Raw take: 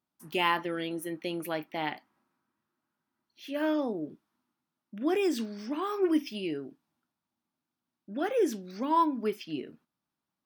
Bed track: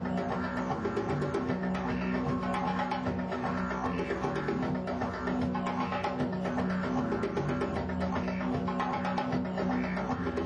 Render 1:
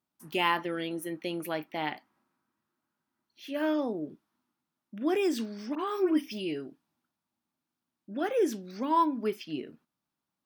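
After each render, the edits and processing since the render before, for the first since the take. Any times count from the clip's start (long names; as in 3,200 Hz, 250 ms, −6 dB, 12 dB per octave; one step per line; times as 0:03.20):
0:05.75–0:08.15: all-pass dispersion highs, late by 48 ms, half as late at 2,000 Hz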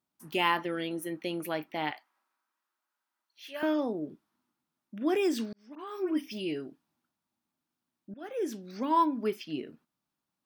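0:01.91–0:03.63: high-pass filter 730 Hz
0:05.53–0:06.47: fade in
0:08.14–0:08.78: fade in, from −19.5 dB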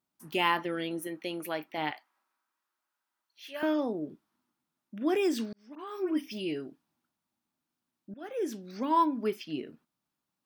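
0:01.07–0:01.78: low-shelf EQ 220 Hz −8 dB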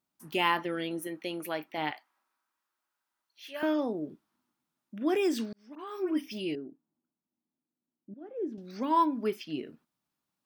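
0:06.55–0:08.58: resonant band-pass 280 Hz, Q 1.1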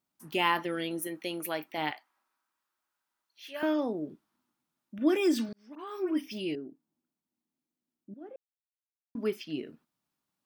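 0:00.55–0:01.94: high-shelf EQ 5,500 Hz +7 dB
0:04.98–0:05.49: comb filter 3.4 ms
0:08.36–0:09.15: silence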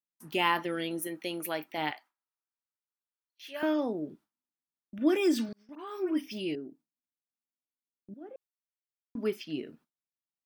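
notch filter 1,100 Hz, Q 30
noise gate with hold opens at −47 dBFS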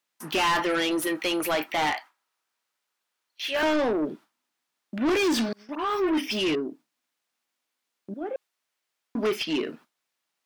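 mid-hump overdrive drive 26 dB, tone 3,700 Hz, clips at −13 dBFS
soft clipping −19 dBFS, distortion −18 dB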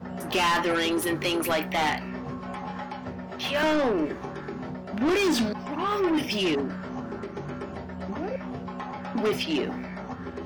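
mix in bed track −4 dB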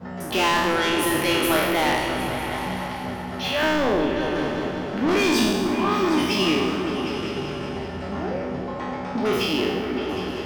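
peak hold with a decay on every bin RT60 1.29 s
echo whose low-pass opens from repeat to repeat 190 ms, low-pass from 200 Hz, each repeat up 2 octaves, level −3 dB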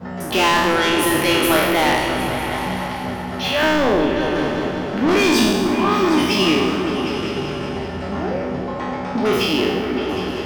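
level +4.5 dB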